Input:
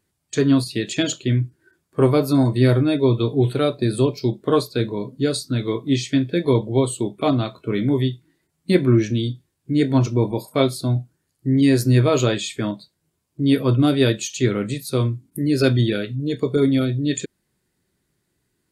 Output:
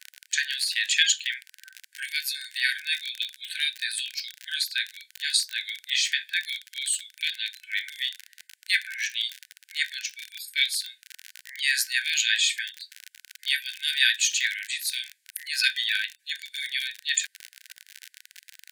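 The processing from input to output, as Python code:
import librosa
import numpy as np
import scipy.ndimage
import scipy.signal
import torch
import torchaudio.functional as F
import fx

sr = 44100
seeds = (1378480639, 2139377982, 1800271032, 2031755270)

y = fx.dmg_crackle(x, sr, seeds[0], per_s=42.0, level_db=-27.0)
y = fx.brickwall_highpass(y, sr, low_hz=1500.0)
y = fx.high_shelf(y, sr, hz=4000.0, db=-5.0)
y = y * librosa.db_to_amplitude(8.5)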